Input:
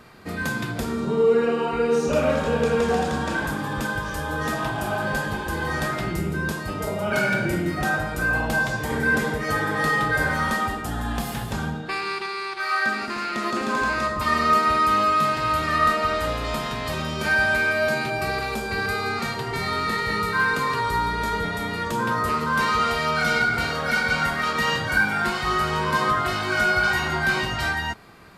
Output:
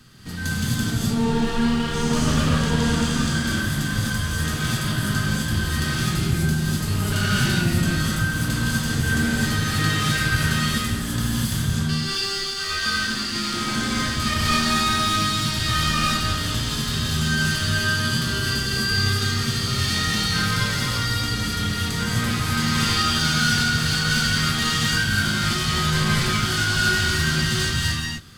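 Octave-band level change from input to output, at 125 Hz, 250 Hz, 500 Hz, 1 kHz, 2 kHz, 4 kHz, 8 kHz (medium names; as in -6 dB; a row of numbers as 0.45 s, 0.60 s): +8.5 dB, +4.5 dB, -8.0 dB, -5.0 dB, -1.5 dB, +9.5 dB, +11.5 dB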